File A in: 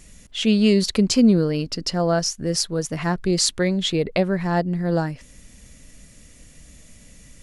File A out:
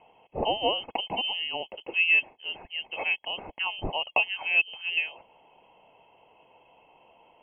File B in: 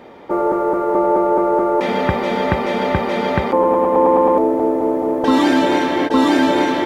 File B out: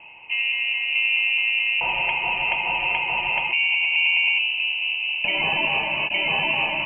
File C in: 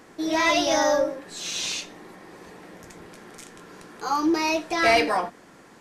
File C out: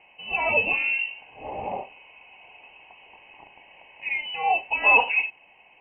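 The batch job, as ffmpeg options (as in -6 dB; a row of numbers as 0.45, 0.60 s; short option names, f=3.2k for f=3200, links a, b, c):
-filter_complex "[0:a]aexciter=amount=10.3:drive=3.4:freq=2.5k,asplit=3[a][b][c];[a]bandpass=f=730:t=q:w=8,volume=0dB[d];[b]bandpass=f=1.09k:t=q:w=8,volume=-6dB[e];[c]bandpass=f=2.44k:t=q:w=8,volume=-9dB[f];[d][e][f]amix=inputs=3:normalize=0,lowpass=f=2.8k:t=q:w=0.5098,lowpass=f=2.8k:t=q:w=0.6013,lowpass=f=2.8k:t=q:w=0.9,lowpass=f=2.8k:t=q:w=2.563,afreqshift=-3300,volume=5.5dB"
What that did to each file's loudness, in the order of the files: -6.0, -4.0, +0.5 LU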